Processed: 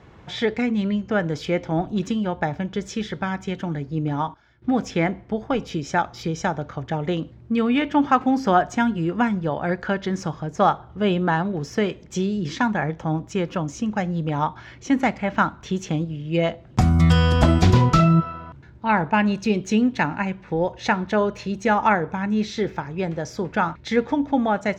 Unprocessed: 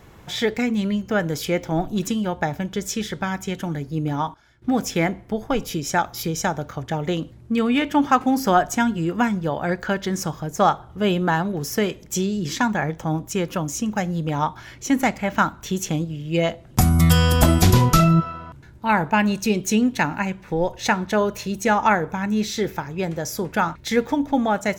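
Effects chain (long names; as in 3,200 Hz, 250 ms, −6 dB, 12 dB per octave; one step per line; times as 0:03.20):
high-pass filter 44 Hz
high-frequency loss of the air 140 metres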